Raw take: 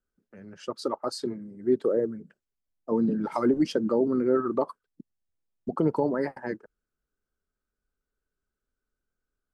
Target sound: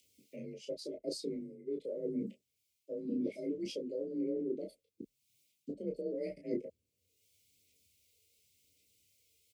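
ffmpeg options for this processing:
ffmpeg -i in.wav -filter_complex "[0:a]highpass=55,acrossover=split=450|1500[link_01][link_02][link_03];[link_03]acompressor=mode=upward:threshold=-60dB:ratio=2.5[link_04];[link_01][link_02][link_04]amix=inputs=3:normalize=0,alimiter=limit=-18dB:level=0:latency=1,areverse,acompressor=threshold=-41dB:ratio=5,areverse,asuperstop=centerf=1100:order=20:qfactor=0.75,aphaser=in_gain=1:out_gain=1:delay=2.5:decay=0.41:speed=0.91:type=sinusoidal,aecho=1:1:20|32:0.531|0.531,afreqshift=37,volume=2dB" out.wav

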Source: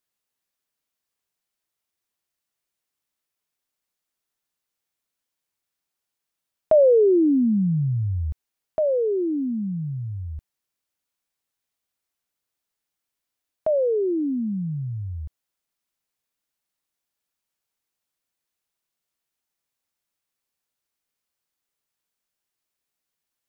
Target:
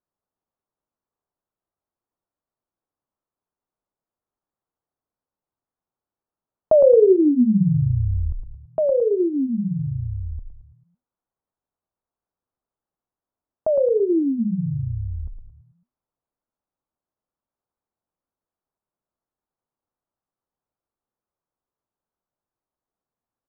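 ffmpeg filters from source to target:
ffmpeg -i in.wav -filter_complex "[0:a]lowpass=frequency=1200:width=0.5412,lowpass=frequency=1200:width=1.3066,asplit=6[link_01][link_02][link_03][link_04][link_05][link_06];[link_02]adelay=110,afreqshift=-50,volume=-5dB[link_07];[link_03]adelay=220,afreqshift=-100,volume=-12.3dB[link_08];[link_04]adelay=330,afreqshift=-150,volume=-19.7dB[link_09];[link_05]adelay=440,afreqshift=-200,volume=-27dB[link_10];[link_06]adelay=550,afreqshift=-250,volume=-34.3dB[link_11];[link_01][link_07][link_08][link_09][link_10][link_11]amix=inputs=6:normalize=0,volume=1.5dB" out.wav

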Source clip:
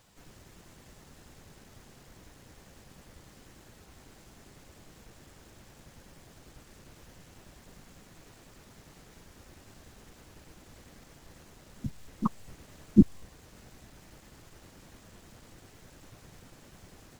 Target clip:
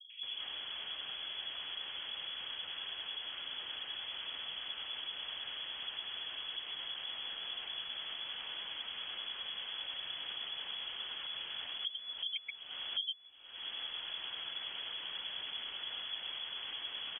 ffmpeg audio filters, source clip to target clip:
ffmpeg -i in.wav -filter_complex "[0:a]acrossover=split=190|1100[link_01][link_02][link_03];[link_02]adelay=100[link_04];[link_03]adelay=230[link_05];[link_01][link_04][link_05]amix=inputs=3:normalize=0,acompressor=threshold=-51dB:ratio=12,lowpass=frequency=2900:width_type=q:width=0.5098,lowpass=frequency=2900:width_type=q:width=0.6013,lowpass=frequency=2900:width_type=q:width=0.9,lowpass=frequency=2900:width_type=q:width=2.563,afreqshift=-3400,volume=14dB" out.wav

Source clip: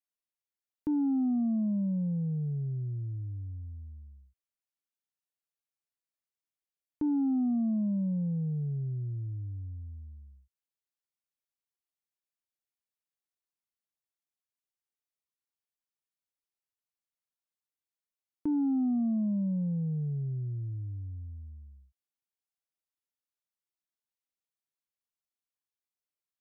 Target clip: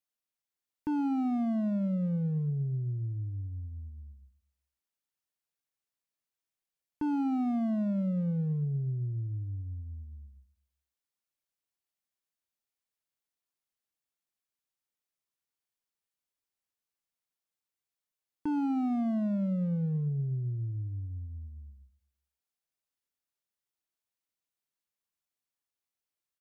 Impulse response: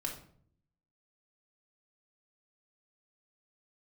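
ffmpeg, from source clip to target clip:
-filter_complex "[0:a]volume=29.5dB,asoftclip=hard,volume=-29.5dB,asplit=2[link_01][link_02];[link_02]adelay=120,lowpass=frequency=890:poles=1,volume=-19dB,asplit=2[link_03][link_04];[link_04]adelay=120,lowpass=frequency=890:poles=1,volume=0.45,asplit=2[link_05][link_06];[link_06]adelay=120,lowpass=frequency=890:poles=1,volume=0.45,asplit=2[link_07][link_08];[link_08]adelay=120,lowpass=frequency=890:poles=1,volume=0.45[link_09];[link_01][link_03][link_05][link_07][link_09]amix=inputs=5:normalize=0,volume=1.5dB"

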